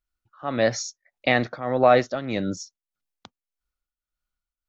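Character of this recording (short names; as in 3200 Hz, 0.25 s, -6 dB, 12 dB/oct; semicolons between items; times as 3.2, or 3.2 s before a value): tremolo triangle 1.7 Hz, depth 80%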